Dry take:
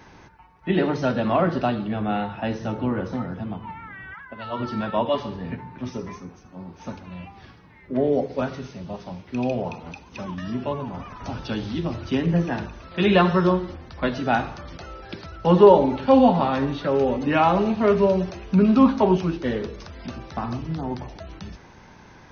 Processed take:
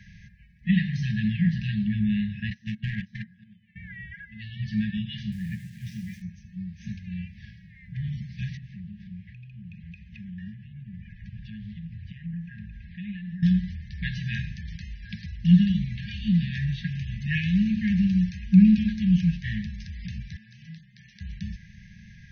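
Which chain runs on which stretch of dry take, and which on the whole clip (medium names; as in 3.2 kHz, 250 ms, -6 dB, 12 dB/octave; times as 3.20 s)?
2.50–3.76 s: gate -26 dBFS, range -28 dB + overdrive pedal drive 20 dB, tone 4 kHz, clips at -14.5 dBFS
5.32–6.22 s: send-on-delta sampling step -44 dBFS + high-pass 130 Hz 6 dB/octave
8.57–13.43 s: low-pass 2.5 kHz + compression 3:1, threshold -40 dBFS
20.36–21.21 s: high-pass 320 Hz + compression 4:1, threshold -38 dBFS
whole clip: treble shelf 2.4 kHz -10.5 dB; FFT band-reject 220–1600 Hz; trim +4 dB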